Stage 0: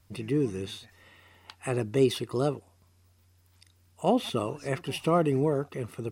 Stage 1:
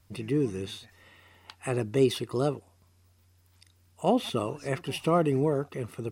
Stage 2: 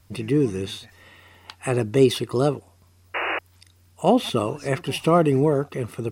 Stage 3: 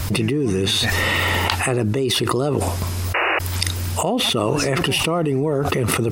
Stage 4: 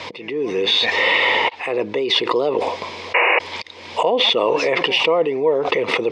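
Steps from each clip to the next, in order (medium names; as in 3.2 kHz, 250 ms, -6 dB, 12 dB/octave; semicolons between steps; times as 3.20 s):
no audible change
painted sound noise, 3.14–3.39 s, 310–2900 Hz -32 dBFS; trim +6.5 dB
level flattener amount 100%; trim -7.5 dB
slow attack 331 ms; cabinet simulation 380–4800 Hz, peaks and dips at 490 Hz +10 dB, 970 Hz +8 dB, 1.4 kHz -9 dB, 2.2 kHz +9 dB, 3.4 kHz +5 dB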